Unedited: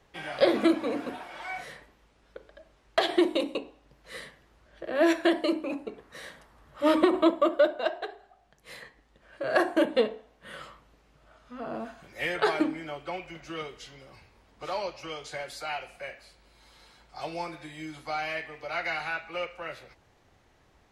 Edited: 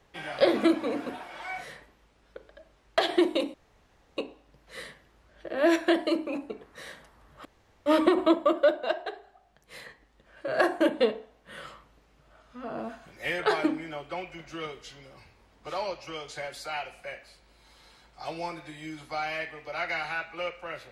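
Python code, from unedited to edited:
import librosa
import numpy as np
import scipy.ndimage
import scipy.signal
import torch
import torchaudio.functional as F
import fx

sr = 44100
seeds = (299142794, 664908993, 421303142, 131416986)

y = fx.edit(x, sr, fx.insert_room_tone(at_s=3.54, length_s=0.63),
    fx.insert_room_tone(at_s=6.82, length_s=0.41), tone=tone)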